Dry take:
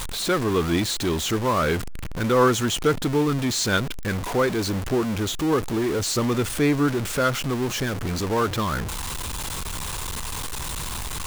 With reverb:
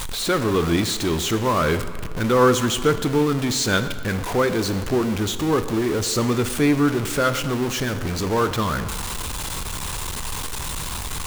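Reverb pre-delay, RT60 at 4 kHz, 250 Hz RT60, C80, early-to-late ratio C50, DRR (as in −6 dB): 15 ms, 1.3 s, 1.7 s, 12.5 dB, 11.5 dB, 10.0 dB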